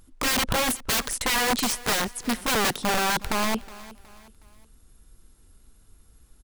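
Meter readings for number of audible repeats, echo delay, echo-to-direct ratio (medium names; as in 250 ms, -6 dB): 3, 367 ms, -18.5 dB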